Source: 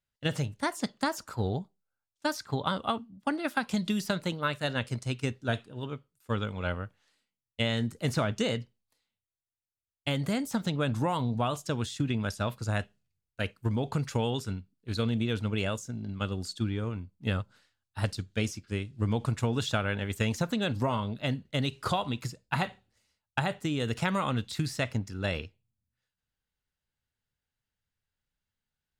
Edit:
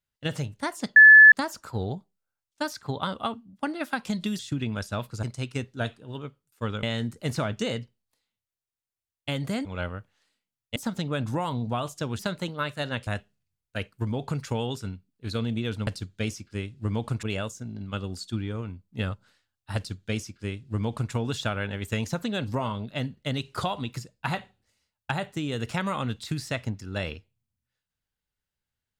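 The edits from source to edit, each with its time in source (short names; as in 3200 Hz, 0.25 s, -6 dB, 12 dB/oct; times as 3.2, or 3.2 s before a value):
0.96 add tone 1730 Hz -7.5 dBFS 0.36 s
4.03–4.91 swap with 11.87–12.71
6.51–7.62 move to 10.44
18.04–19.4 copy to 15.51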